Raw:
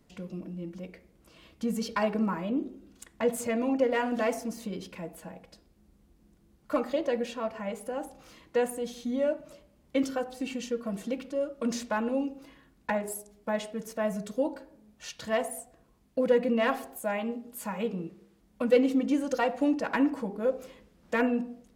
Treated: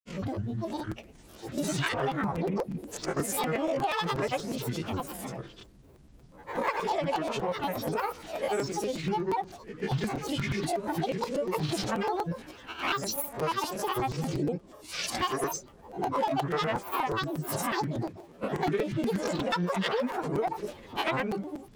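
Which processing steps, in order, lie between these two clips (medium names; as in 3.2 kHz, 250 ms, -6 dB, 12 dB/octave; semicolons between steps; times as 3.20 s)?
reverse spectral sustain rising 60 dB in 0.53 s; granulator, grains 20 per s, pitch spread up and down by 12 st; dynamic bell 280 Hz, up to -5 dB, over -37 dBFS, Q 0.86; compression 5:1, threshold -33 dBFS, peak gain reduction 12.5 dB; crackling interface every 0.12 s, samples 256, repeat, from 0.79 s; trim +6.5 dB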